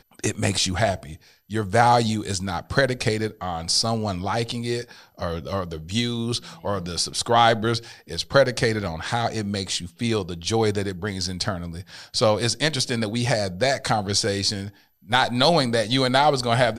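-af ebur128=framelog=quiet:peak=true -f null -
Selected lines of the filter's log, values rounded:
Integrated loudness:
  I:         -23.0 LUFS
  Threshold: -33.2 LUFS
Loudness range:
  LRA:         3.9 LU
  Threshold: -43.6 LUFS
  LRA low:   -25.9 LUFS
  LRA high:  -22.0 LUFS
True peak:
  Peak:       -3.4 dBFS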